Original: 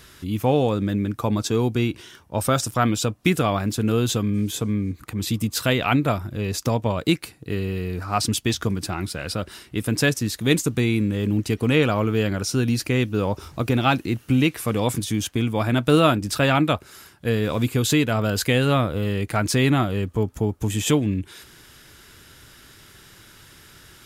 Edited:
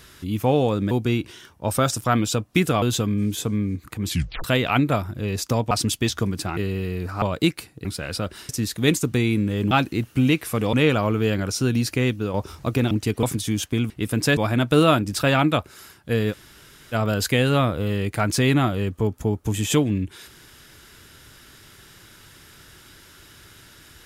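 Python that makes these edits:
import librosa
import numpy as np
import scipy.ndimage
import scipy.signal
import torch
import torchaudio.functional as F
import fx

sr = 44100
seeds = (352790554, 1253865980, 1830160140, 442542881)

y = fx.edit(x, sr, fx.cut(start_s=0.91, length_s=0.7),
    fx.cut(start_s=3.52, length_s=0.46),
    fx.tape_stop(start_s=5.25, length_s=0.35),
    fx.swap(start_s=6.87, length_s=0.63, other_s=8.15, other_length_s=0.86),
    fx.move(start_s=9.65, length_s=0.47, to_s=15.53),
    fx.swap(start_s=11.34, length_s=0.32, other_s=13.84, other_length_s=1.02),
    fx.fade_out_to(start_s=12.89, length_s=0.38, curve='qsin', floor_db=-6.0),
    fx.room_tone_fill(start_s=17.48, length_s=0.61, crossfade_s=0.04), tone=tone)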